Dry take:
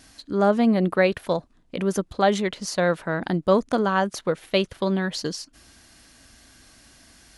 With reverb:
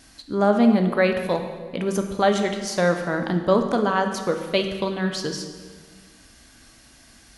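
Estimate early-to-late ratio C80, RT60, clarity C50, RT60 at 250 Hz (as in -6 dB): 8.5 dB, 1.6 s, 7.0 dB, 1.9 s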